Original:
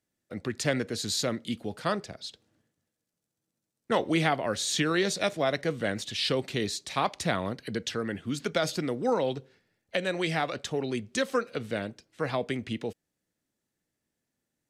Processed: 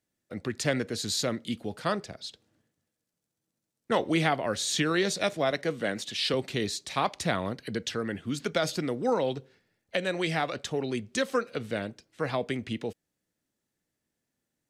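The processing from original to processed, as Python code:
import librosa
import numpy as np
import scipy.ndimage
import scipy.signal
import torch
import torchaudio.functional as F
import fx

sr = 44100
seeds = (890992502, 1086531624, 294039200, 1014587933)

y = fx.highpass(x, sr, hz=160.0, slope=12, at=(5.51, 6.34))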